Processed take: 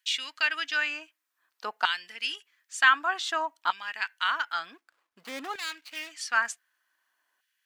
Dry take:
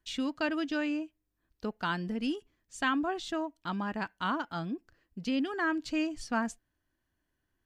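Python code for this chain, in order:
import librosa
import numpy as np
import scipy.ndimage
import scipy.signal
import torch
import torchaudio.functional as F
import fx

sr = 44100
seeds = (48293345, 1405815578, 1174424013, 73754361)

y = fx.median_filter(x, sr, points=25, at=(4.74, 6.12))
y = fx.filter_lfo_highpass(y, sr, shape='saw_down', hz=0.54, low_hz=910.0, high_hz=2500.0, q=1.5)
y = y * 10.0 ** (8.5 / 20.0)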